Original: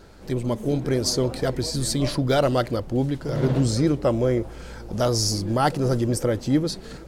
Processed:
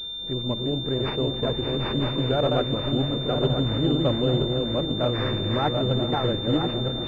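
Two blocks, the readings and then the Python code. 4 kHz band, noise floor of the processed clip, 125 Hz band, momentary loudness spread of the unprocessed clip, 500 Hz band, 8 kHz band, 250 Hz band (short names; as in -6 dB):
+5.0 dB, -31 dBFS, -1.0 dB, 6 LU, -1.0 dB, under -25 dB, -1.5 dB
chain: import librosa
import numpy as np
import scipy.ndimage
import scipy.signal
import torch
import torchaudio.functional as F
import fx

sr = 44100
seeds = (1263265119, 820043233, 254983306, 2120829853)

y = fx.reverse_delay_fb(x, sr, ms=492, feedback_pct=58, wet_db=-2.5)
y = fx.echo_diffused(y, sr, ms=463, feedback_pct=64, wet_db=-15)
y = fx.pwm(y, sr, carrier_hz=3600.0)
y = y * librosa.db_to_amplitude(-4.0)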